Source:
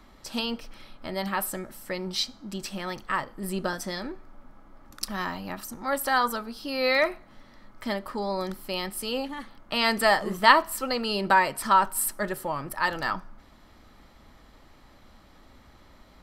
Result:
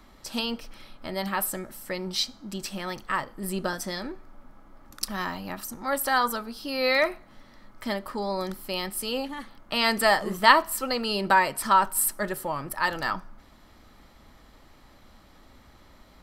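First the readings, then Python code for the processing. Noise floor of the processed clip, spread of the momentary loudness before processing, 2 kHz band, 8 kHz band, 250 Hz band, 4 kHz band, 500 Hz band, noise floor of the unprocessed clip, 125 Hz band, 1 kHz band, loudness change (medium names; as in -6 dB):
-55 dBFS, 14 LU, 0.0 dB, +2.5 dB, 0.0 dB, +1.0 dB, 0.0 dB, -55 dBFS, 0.0 dB, 0.0 dB, +0.5 dB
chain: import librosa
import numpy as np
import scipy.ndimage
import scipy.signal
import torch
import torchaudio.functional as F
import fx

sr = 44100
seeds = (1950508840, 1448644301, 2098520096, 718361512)

y = fx.high_shelf(x, sr, hz=6900.0, db=4.0)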